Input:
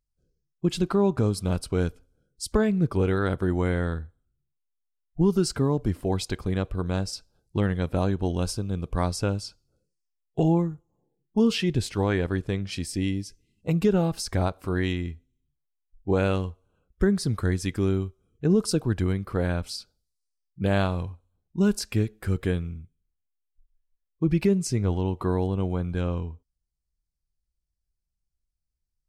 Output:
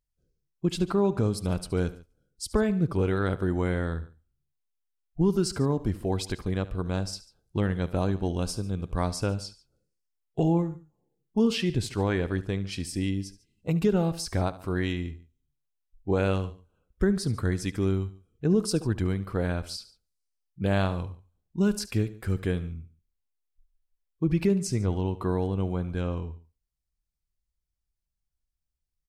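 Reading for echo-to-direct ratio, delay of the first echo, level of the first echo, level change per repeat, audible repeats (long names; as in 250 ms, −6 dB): −15.5 dB, 72 ms, −17.0 dB, −4.5 dB, 2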